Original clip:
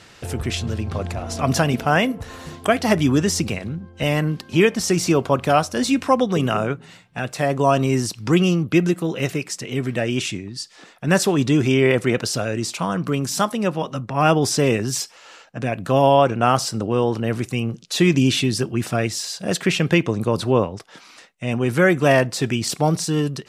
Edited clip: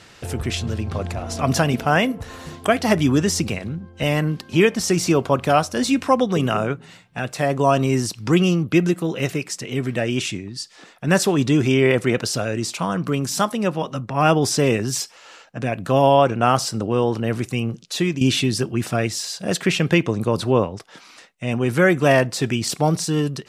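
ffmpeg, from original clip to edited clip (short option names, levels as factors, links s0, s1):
-filter_complex "[0:a]asplit=2[s0][s1];[s0]atrim=end=18.21,asetpts=PTS-STARTPTS,afade=t=out:st=17.79:d=0.42:silence=0.298538[s2];[s1]atrim=start=18.21,asetpts=PTS-STARTPTS,afade=t=in:d=0.004:c=hsin:silence=0.298538[s3];[s2][s3]concat=n=2:v=0:a=1"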